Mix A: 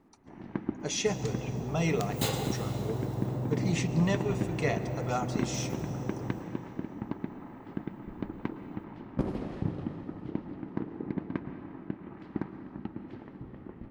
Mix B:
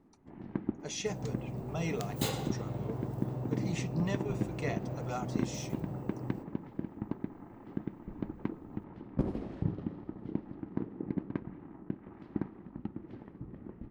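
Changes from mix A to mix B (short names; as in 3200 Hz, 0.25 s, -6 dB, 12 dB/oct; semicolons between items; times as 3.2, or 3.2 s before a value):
speech -5.0 dB; first sound: add tilt shelf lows +3.5 dB, about 640 Hz; reverb: off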